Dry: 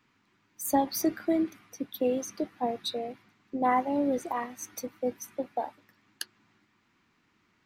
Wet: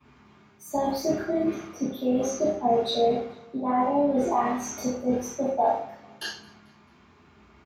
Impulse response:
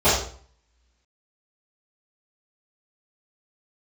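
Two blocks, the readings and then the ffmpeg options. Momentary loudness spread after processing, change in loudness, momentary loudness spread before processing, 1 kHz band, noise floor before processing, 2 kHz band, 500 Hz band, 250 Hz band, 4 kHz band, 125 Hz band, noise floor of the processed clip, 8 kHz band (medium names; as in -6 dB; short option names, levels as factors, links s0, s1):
12 LU, +5.0 dB, 14 LU, +4.5 dB, -71 dBFS, +2.0 dB, +7.0 dB, +4.0 dB, +4.5 dB, +10.0 dB, -57 dBFS, +1.5 dB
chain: -filter_complex "[0:a]highshelf=f=4400:g=-5,areverse,acompressor=threshold=0.0178:ratio=6,areverse,aecho=1:1:221|442|663:0.0631|0.0278|0.0122[s0];[1:a]atrim=start_sample=2205[s1];[s0][s1]afir=irnorm=-1:irlink=0,volume=0.422"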